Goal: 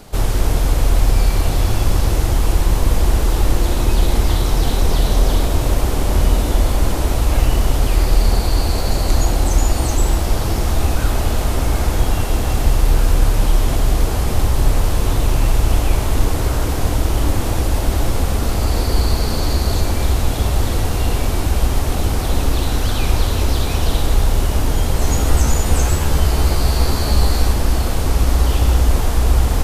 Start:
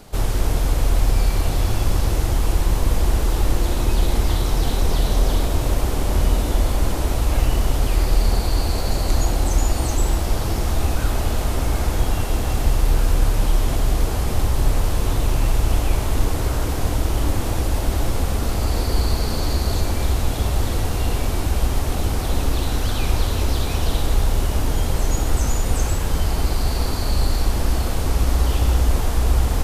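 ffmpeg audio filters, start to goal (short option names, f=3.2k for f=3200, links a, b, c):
-filter_complex "[0:a]asettb=1/sr,asplit=3[a][b][c];[a]atrim=end=25.004[d];[b]atrim=start=25:end=27.53,asetpts=PTS-STARTPTS,afade=t=in:d=0.004:c=qsin,afade=t=out:st=2.526:d=0.004:c=qsin,asplit=2[e][f];[f]adelay=14,volume=-3dB[g];[e][g]amix=inputs=2:normalize=0,atrim=end_sample=111573[h];[c]atrim=start=27.526[i];[d][h]acrossfade=d=0.004:c1=hsin:c2=qsin[j];[j][i]acrossfade=d=0.004:c1=qsin:c2=hsin,volume=3.5dB"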